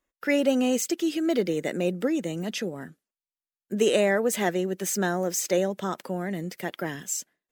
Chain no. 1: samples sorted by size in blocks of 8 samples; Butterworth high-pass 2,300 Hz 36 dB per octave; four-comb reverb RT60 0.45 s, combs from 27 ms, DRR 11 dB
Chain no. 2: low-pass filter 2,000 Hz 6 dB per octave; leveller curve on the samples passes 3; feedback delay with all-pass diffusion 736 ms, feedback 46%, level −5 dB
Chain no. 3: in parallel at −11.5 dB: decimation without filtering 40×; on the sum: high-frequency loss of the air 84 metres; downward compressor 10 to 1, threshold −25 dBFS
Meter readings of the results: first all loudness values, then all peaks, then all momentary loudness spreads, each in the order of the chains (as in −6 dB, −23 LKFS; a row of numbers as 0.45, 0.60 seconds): −31.5, −19.5, −31.5 LKFS; −11.0, −6.0, −16.0 dBFS; 12, 8, 6 LU